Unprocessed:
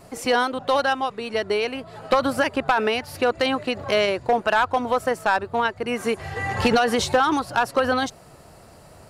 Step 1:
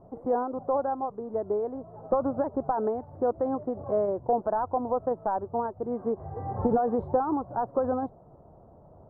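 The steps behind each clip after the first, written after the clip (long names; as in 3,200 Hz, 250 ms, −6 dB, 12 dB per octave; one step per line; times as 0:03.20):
inverse Chebyshev low-pass filter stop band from 2,400 Hz, stop band 50 dB
level −4.5 dB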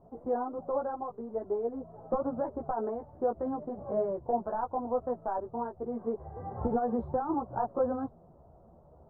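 multi-voice chorus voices 6, 1.1 Hz, delay 15 ms, depth 3 ms
level −1.5 dB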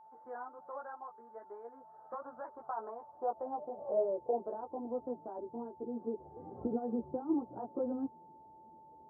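band-pass filter sweep 1,600 Hz → 310 Hz, 0:02.28–0:04.91
steady tone 880 Hz −56 dBFS
level +1 dB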